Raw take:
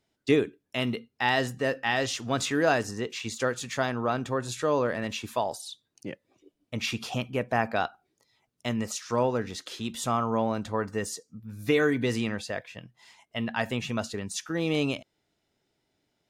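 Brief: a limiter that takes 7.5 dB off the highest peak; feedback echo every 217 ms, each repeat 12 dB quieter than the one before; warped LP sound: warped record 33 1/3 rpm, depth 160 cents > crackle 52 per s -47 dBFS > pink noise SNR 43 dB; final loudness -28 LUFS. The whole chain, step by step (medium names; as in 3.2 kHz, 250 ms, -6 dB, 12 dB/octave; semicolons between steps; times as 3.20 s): peak limiter -17.5 dBFS; feedback delay 217 ms, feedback 25%, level -12 dB; warped record 33 1/3 rpm, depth 160 cents; crackle 52 per s -47 dBFS; pink noise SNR 43 dB; trim +2.5 dB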